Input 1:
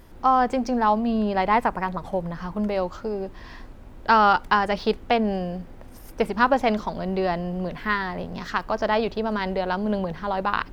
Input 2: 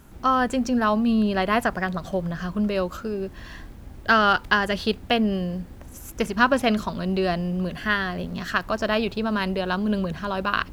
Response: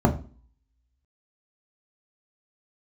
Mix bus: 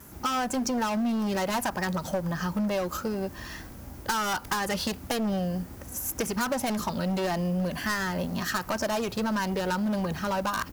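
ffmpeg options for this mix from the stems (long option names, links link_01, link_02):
-filter_complex "[0:a]bandpass=frequency=1200:width_type=q:width=0.84:csg=0,asoftclip=type=tanh:threshold=-21dB,asplit=2[link_01][link_02];[link_02]adelay=4.6,afreqshift=1.8[link_03];[link_01][link_03]amix=inputs=2:normalize=1,volume=2.5dB[link_04];[1:a]highpass=57,volume=23.5dB,asoftclip=hard,volume=-23.5dB,adelay=2.9,volume=0.5dB[link_05];[link_04][link_05]amix=inputs=2:normalize=0,aexciter=amount=2.6:drive=4.9:freq=5000,acompressor=threshold=-25dB:ratio=5"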